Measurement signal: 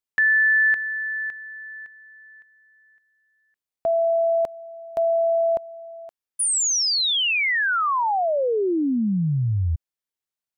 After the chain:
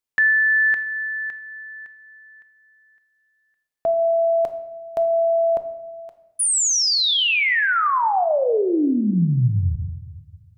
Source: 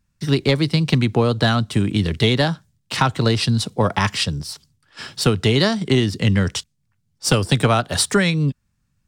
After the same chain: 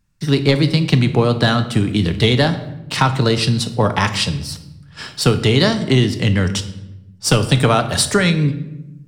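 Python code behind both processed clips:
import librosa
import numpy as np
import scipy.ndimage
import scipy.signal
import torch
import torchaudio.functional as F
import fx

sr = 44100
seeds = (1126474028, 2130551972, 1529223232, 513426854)

y = fx.room_shoebox(x, sr, seeds[0], volume_m3=370.0, walls='mixed', distance_m=0.44)
y = y * 10.0 ** (2.0 / 20.0)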